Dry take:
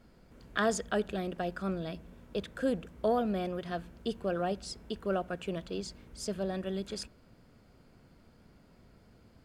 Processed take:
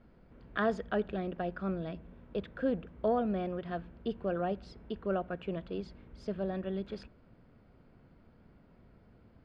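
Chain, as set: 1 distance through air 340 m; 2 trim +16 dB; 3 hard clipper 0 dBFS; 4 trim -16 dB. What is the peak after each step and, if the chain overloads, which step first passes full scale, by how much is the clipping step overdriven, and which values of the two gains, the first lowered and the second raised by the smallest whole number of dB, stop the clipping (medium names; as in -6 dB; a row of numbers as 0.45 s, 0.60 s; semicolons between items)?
-18.0 dBFS, -2.0 dBFS, -2.0 dBFS, -18.0 dBFS; nothing clips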